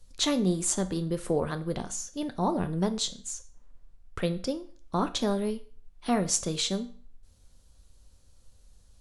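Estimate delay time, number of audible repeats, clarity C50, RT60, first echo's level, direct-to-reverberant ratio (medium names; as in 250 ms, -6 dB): no echo, no echo, 15.5 dB, 0.45 s, no echo, 9.0 dB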